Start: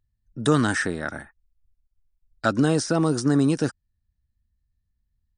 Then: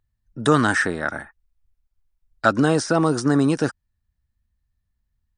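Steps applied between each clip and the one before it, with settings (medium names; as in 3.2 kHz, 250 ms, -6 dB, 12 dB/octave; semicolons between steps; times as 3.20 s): peaking EQ 1.1 kHz +6.5 dB 2.5 oct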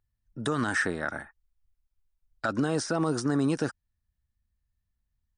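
peak limiter -11.5 dBFS, peak gain reduction 9 dB; trim -5.5 dB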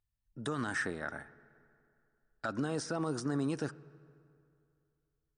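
reverberation RT60 2.6 s, pre-delay 3 ms, DRR 17.5 dB; trim -7.5 dB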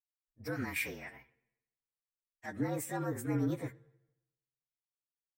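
frequency axis rescaled in octaves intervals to 114%; three bands expanded up and down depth 100%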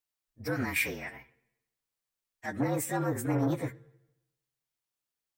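transformer saturation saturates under 420 Hz; trim +6.5 dB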